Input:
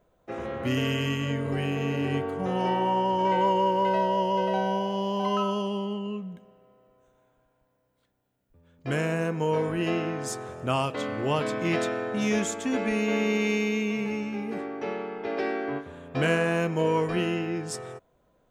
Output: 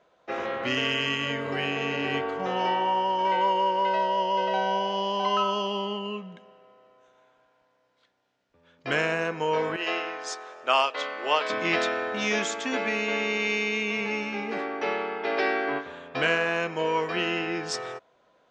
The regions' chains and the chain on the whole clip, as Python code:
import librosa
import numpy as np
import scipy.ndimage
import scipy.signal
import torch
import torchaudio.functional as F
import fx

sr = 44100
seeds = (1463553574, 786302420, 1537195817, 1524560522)

y = fx.chain(x, sr, fx.highpass(hz=450.0, slope=12),
    fx.upward_expand(threshold_db=-39.0, expansion=1.5), at=(9.76, 11.5))
y = scipy.signal.sosfilt(scipy.signal.butter(4, 5700.0, 'lowpass', fs=sr, output='sos'), y)
y = fx.rider(y, sr, range_db=3, speed_s=0.5)
y = fx.highpass(y, sr, hz=1000.0, slope=6)
y = F.gain(torch.from_numpy(y), 7.0).numpy()